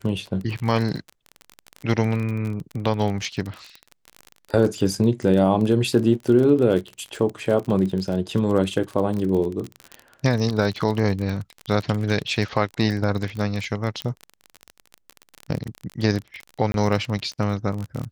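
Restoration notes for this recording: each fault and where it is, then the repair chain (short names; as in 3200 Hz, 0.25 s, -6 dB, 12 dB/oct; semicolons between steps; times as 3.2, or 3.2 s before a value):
crackle 31/s -26 dBFS
14.02 pop -14 dBFS
16.72–16.74 gap 22 ms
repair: de-click; interpolate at 16.72, 22 ms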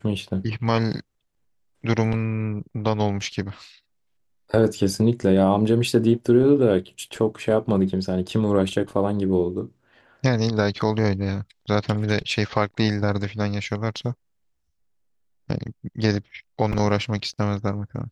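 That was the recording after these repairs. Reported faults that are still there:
none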